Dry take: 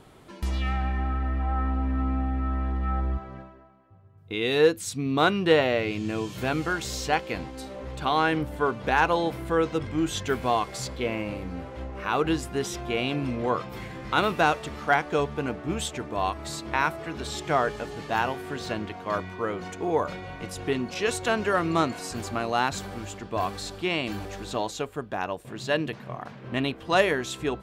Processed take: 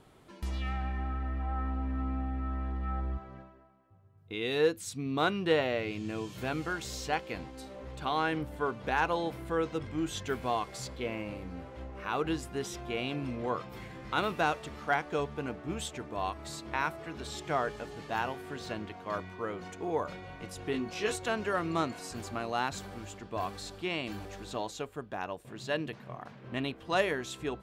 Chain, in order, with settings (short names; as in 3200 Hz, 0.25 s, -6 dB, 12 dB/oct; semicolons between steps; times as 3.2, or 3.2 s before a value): 20.72–21.16 doubler 19 ms -4 dB; gain -7 dB